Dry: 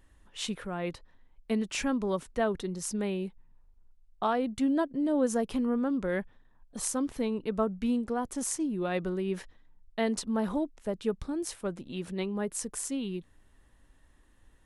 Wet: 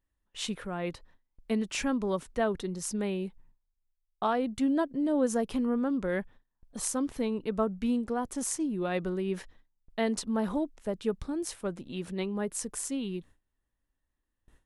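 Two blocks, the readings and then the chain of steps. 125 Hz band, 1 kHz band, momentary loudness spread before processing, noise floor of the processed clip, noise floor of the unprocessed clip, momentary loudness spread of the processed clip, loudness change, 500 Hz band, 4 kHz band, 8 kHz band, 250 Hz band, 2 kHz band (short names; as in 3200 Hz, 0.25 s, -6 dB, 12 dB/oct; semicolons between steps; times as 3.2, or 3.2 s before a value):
0.0 dB, 0.0 dB, 9 LU, -82 dBFS, -62 dBFS, 9 LU, 0.0 dB, 0.0 dB, 0.0 dB, 0.0 dB, 0.0 dB, 0.0 dB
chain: gate with hold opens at -48 dBFS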